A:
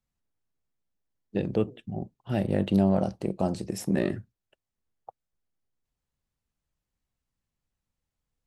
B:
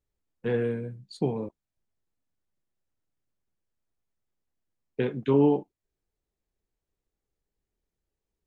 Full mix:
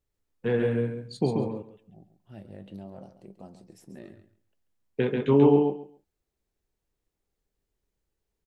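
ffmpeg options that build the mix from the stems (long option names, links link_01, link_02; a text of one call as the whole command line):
ffmpeg -i stem1.wav -i stem2.wav -filter_complex "[0:a]flanger=delay=3.9:depth=7.1:regen=63:speed=0.58:shape=triangular,volume=-15dB,asplit=2[link_01][link_02];[link_02]volume=-12dB[link_03];[1:a]volume=1.5dB,asplit=3[link_04][link_05][link_06];[link_05]volume=-3.5dB[link_07];[link_06]apad=whole_len=373148[link_08];[link_01][link_08]sidechaincompress=threshold=-40dB:ratio=8:attack=16:release=390[link_09];[link_03][link_07]amix=inputs=2:normalize=0,aecho=0:1:137|274|411:1|0.17|0.0289[link_10];[link_09][link_04][link_10]amix=inputs=3:normalize=0" out.wav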